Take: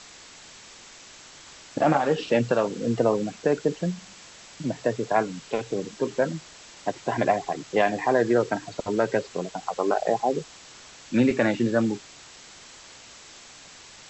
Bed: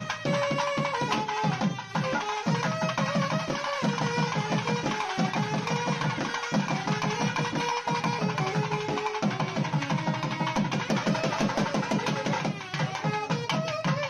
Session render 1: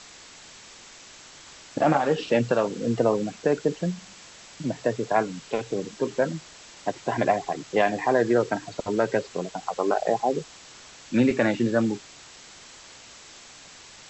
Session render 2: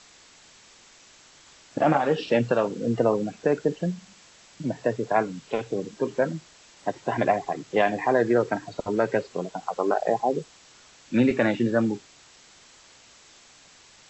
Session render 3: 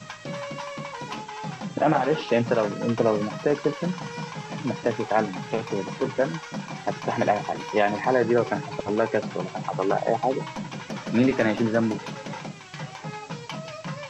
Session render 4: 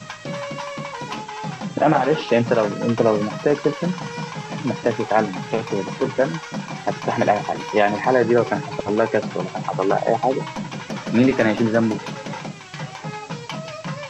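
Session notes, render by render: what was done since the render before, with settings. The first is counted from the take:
nothing audible
noise print and reduce 6 dB
add bed -7 dB
gain +4.5 dB

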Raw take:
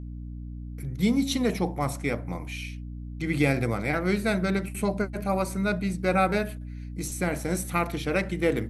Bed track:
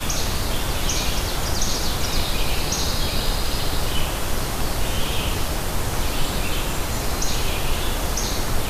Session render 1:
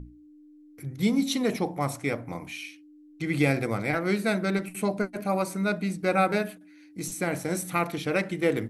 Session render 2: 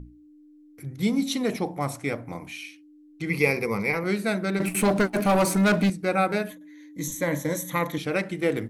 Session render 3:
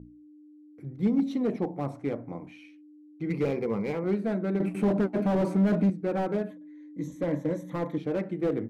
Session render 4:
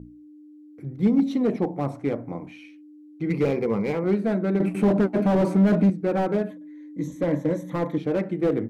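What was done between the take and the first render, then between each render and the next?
notches 60/120/180/240 Hz
3.29–4.04 ripple EQ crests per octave 0.84, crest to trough 13 dB; 4.6–5.9 sample leveller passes 3; 6.5–7.98 ripple EQ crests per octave 1.1, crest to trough 14 dB
band-pass 300 Hz, Q 0.64; slew limiter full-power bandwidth 33 Hz
gain +5 dB

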